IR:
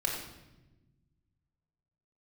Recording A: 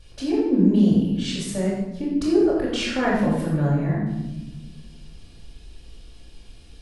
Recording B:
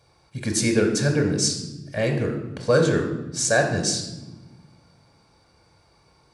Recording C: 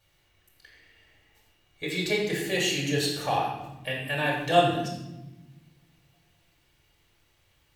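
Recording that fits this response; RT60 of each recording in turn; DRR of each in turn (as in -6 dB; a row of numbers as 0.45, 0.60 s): C; 1.1 s, not exponential, 1.1 s; -8.5, 2.5, -3.0 dB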